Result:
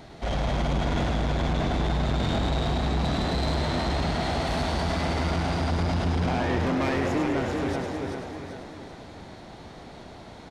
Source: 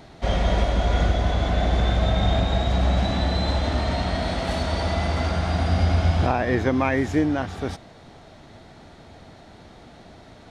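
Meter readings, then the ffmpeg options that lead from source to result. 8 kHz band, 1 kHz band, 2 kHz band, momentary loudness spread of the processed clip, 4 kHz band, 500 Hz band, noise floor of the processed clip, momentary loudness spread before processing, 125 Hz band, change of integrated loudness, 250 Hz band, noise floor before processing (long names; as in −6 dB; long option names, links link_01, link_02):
can't be measured, −2.5 dB, −2.5 dB, 18 LU, −2.5 dB, −3.0 dB, −45 dBFS, 5 LU, −4.5 dB, −3.5 dB, −1.5 dB, −47 dBFS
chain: -filter_complex "[0:a]asplit=2[link_01][link_02];[link_02]aecho=0:1:386|772|1158|1544|1930:0.447|0.192|0.0826|0.0355|0.0153[link_03];[link_01][link_03]amix=inputs=2:normalize=0,asoftclip=type=tanh:threshold=-24dB,asplit=2[link_04][link_05];[link_05]asplit=8[link_06][link_07][link_08][link_09][link_10][link_11][link_12][link_13];[link_06]adelay=104,afreqshift=89,volume=-6dB[link_14];[link_07]adelay=208,afreqshift=178,volume=-10.4dB[link_15];[link_08]adelay=312,afreqshift=267,volume=-14.9dB[link_16];[link_09]adelay=416,afreqshift=356,volume=-19.3dB[link_17];[link_10]adelay=520,afreqshift=445,volume=-23.7dB[link_18];[link_11]adelay=624,afreqshift=534,volume=-28.2dB[link_19];[link_12]adelay=728,afreqshift=623,volume=-32.6dB[link_20];[link_13]adelay=832,afreqshift=712,volume=-37.1dB[link_21];[link_14][link_15][link_16][link_17][link_18][link_19][link_20][link_21]amix=inputs=8:normalize=0[link_22];[link_04][link_22]amix=inputs=2:normalize=0"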